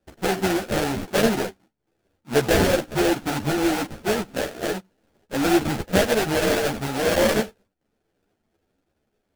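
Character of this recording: aliases and images of a low sample rate 1100 Hz, jitter 20%; a shimmering, thickened sound

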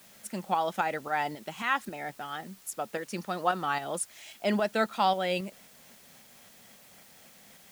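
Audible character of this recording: tremolo saw up 3.7 Hz, depth 50%; a quantiser's noise floor 10-bit, dither triangular

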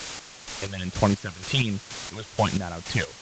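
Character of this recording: phasing stages 8, 1.2 Hz, lowest notch 200–3700 Hz; a quantiser's noise floor 6-bit, dither triangular; chopped level 2.1 Hz, depth 65%, duty 40%; A-law

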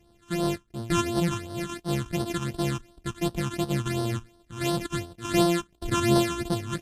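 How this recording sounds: a buzz of ramps at a fixed pitch in blocks of 128 samples; phasing stages 8, 2.8 Hz, lowest notch 580–2300 Hz; Vorbis

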